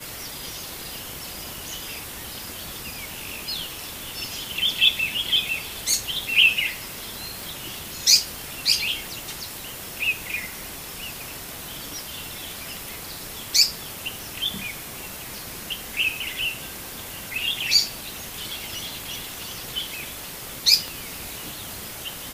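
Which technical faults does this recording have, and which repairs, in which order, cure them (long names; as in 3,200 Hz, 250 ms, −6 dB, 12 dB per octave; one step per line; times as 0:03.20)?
0:07.40: click
0:14.19: click
0:20.88: click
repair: click removal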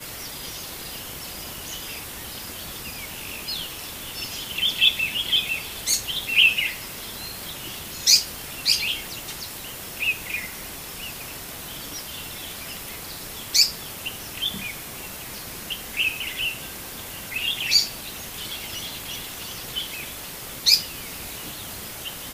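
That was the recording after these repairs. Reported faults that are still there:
none of them is left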